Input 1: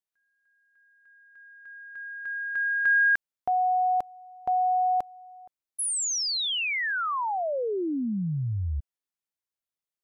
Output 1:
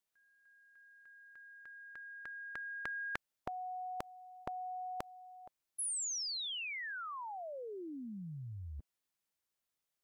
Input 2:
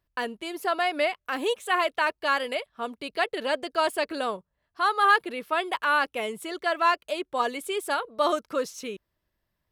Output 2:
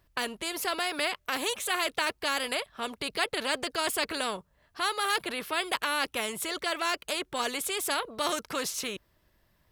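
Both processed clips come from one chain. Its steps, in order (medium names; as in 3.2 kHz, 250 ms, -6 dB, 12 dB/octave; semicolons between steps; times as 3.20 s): spectrum-flattening compressor 2:1; trim -3.5 dB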